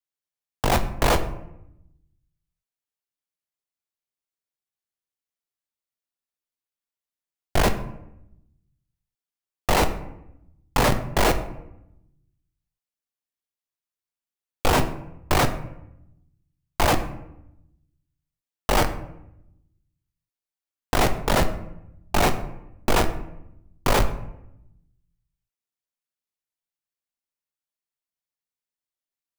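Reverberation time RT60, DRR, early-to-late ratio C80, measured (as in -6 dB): 0.85 s, 7.5 dB, 14.5 dB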